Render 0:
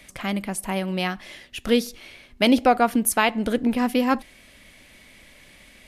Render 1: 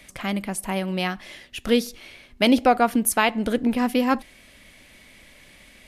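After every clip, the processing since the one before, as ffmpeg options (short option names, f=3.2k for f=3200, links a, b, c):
-af anull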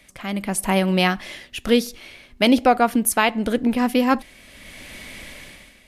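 -af "dynaudnorm=f=140:g=7:m=16dB,volume=-4dB"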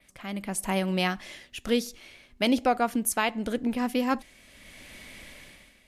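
-af "adynamicequalizer=threshold=0.00708:dfrequency=6900:dqfactor=1.7:tfrequency=6900:tqfactor=1.7:attack=5:release=100:ratio=0.375:range=2.5:mode=boostabove:tftype=bell,volume=-8dB"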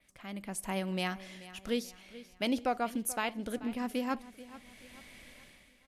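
-af "aecho=1:1:434|868|1302|1736:0.141|0.0593|0.0249|0.0105,volume=-7.5dB"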